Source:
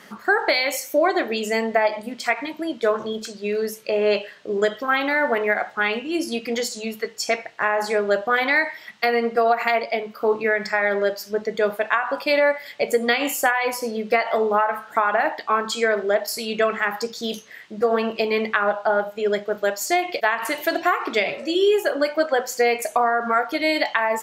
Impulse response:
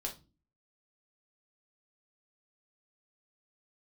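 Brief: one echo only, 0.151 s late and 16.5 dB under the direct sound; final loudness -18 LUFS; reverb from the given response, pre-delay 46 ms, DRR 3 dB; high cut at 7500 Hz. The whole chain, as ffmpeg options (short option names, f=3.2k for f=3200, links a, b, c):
-filter_complex "[0:a]lowpass=7.5k,aecho=1:1:151:0.15,asplit=2[a][b];[1:a]atrim=start_sample=2205,adelay=46[c];[b][c]afir=irnorm=-1:irlink=0,volume=-3dB[d];[a][d]amix=inputs=2:normalize=0,volume=2dB"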